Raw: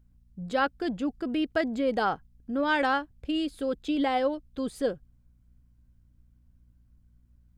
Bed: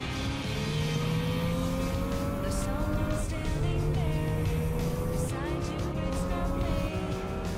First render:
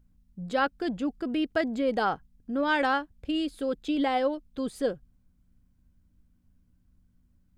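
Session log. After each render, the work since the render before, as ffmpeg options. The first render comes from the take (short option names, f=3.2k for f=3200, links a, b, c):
-af "bandreject=f=60:t=h:w=4,bandreject=f=120:t=h:w=4"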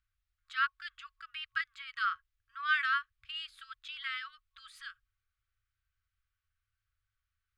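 -filter_complex "[0:a]afftfilt=real='re*(1-between(b*sr/4096,110,1100))':imag='im*(1-between(b*sr/4096,110,1100))':win_size=4096:overlap=0.75,acrossover=split=210 4100:gain=0.0708 1 0.224[a][b][c];[a][b][c]amix=inputs=3:normalize=0"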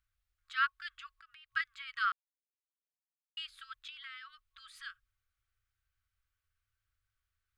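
-filter_complex "[0:a]asettb=1/sr,asplit=3[a][b][c];[a]atrim=end=1.114[d];[b]atrim=start=1.11:end=1.54,asetpts=PTS-STARTPTS,afade=t=in:d=0.004:c=qsin,afade=t=out:st=0.426:d=0.004:c=qsin,acompressor=threshold=-56dB:ratio=5:attack=3.2:release=140:knee=1:detection=peak[e];[c]atrim=start=1.536[f];[d][e]acrossfade=d=0.004:c1=hsin:c2=qsin[g];[g][f]acrossfade=d=0.004:c1=qsin:c2=hsin,asettb=1/sr,asplit=3[h][i][j];[h]atrim=end=3.894[k];[i]atrim=start=3.89:end=4.71,asetpts=PTS-STARTPTS,afade=t=in:d=0.004:c=qsin,afade=t=out:st=0.816:d=0.004:c=qsin,acompressor=threshold=-51dB:ratio=2:attack=3.2:release=140:knee=1:detection=peak[l];[j]atrim=start=4.706[m];[k][l]acrossfade=d=0.004:c1=hsin:c2=qsin[n];[n][m]acrossfade=d=0.004:c1=qsin:c2=hsin,asplit=3[o][p][q];[o]atrim=end=2.12,asetpts=PTS-STARTPTS,afade=t=out:st=2.116:d=0.004:c=hsin[r];[p]atrim=start=2.12:end=3.37,asetpts=PTS-STARTPTS,volume=0[s];[q]atrim=start=3.37,asetpts=PTS-STARTPTS,afade=t=in:d=0.004:c=hsin[t];[r][s][t]concat=n=3:v=0:a=1"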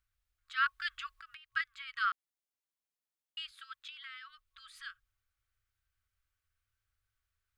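-filter_complex "[0:a]asettb=1/sr,asplit=3[a][b][c];[a]atrim=end=3.514[d];[b]atrim=start=3.51:end=4.29,asetpts=PTS-STARTPTS,afade=t=in:d=0.004:c=qsin,afade=t=out:st=0.776:d=0.004:c=qsin,highpass=f=330:p=1[e];[c]atrim=start=4.286[f];[d][e]acrossfade=d=0.004:c1=hsin:c2=qsin[g];[g][f]acrossfade=d=0.004:c1=qsin:c2=hsin,asplit=3[h][i][j];[h]atrim=end=0.662[k];[i]atrim=start=0.658:end=1.372,asetpts=PTS-STARTPTS,volume=7dB[l];[j]atrim=start=1.368[m];[k][l]acrossfade=d=0.004:c1=hsin:c2=hsin[n];[n][m]acrossfade=d=0.004:c1=hsin:c2=hsin"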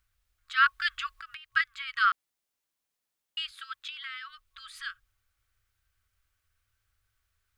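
-af "volume=8dB"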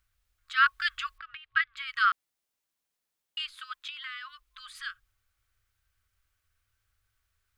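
-filter_complex "[0:a]asettb=1/sr,asplit=3[a][b][c];[a]atrim=end=1.184[d];[b]atrim=start=1.18:end=1.77,asetpts=PTS-STARTPTS,afade=t=in:d=0.004:c=qsin,afade=t=out:st=0.586:d=0.004:c=qsin,lowpass=f=3.8k:w=0.5412,lowpass=f=3.8k:w=1.3066[e];[c]atrim=start=1.766[f];[d][e]acrossfade=d=0.004:c1=hsin:c2=qsin[g];[g][f]acrossfade=d=0.004:c1=qsin:c2=hsin,asplit=3[h][i][j];[h]afade=t=out:st=3.38:d=0.02[k];[i]afreqshift=-56,afade=t=in:st=3.38:d=0.02,afade=t=out:st=4.73:d=0.02[l];[j]afade=t=in:st=4.73:d=0.02[m];[k][l][m]amix=inputs=3:normalize=0"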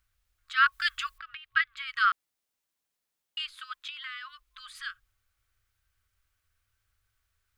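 -filter_complex "[0:a]asettb=1/sr,asplit=3[a][b][c];[a]atrim=end=0.724[d];[b]atrim=start=0.72:end=1.74,asetpts=PTS-STARTPTS,afade=t=in:d=0.004:c=qsin,afade=t=out:st=1.016:d=0.004:c=qsin,highshelf=f=6.2k:g=9.5[e];[c]atrim=start=1.736[f];[d][e]acrossfade=d=0.004:c1=hsin:c2=qsin[g];[g][f]acrossfade=d=0.004:c1=qsin:c2=hsin"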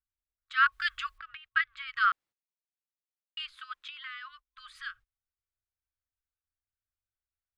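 -af "agate=range=-21dB:threshold=-51dB:ratio=16:detection=peak,lowpass=f=2.5k:p=1"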